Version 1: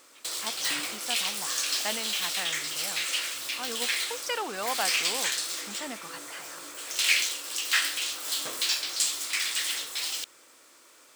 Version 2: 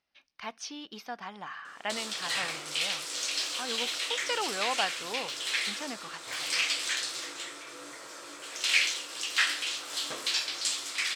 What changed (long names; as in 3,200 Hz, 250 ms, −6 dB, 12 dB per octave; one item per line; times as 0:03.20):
background: entry +1.65 s
master: add high-frequency loss of the air 58 metres